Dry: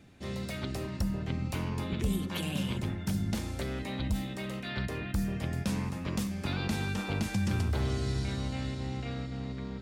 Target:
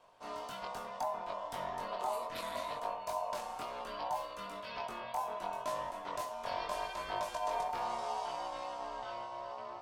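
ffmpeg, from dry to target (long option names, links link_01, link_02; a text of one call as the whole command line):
ffmpeg -i in.wav -af "aeval=exprs='val(0)*sin(2*PI*820*n/s)':channel_layout=same,flanger=delay=19.5:depth=2.7:speed=0.7,volume=-1dB" out.wav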